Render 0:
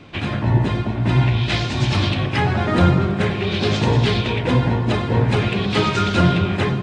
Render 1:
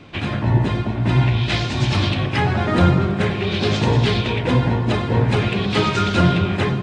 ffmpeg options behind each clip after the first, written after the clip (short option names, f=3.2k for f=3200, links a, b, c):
-af anull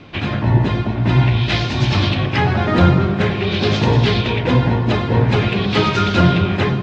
-af "lowpass=f=6.2k:w=0.5412,lowpass=f=6.2k:w=1.3066,volume=2.5dB"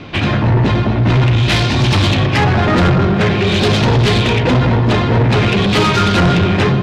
-af "asoftclip=type=tanh:threshold=-17dB,volume=8.5dB"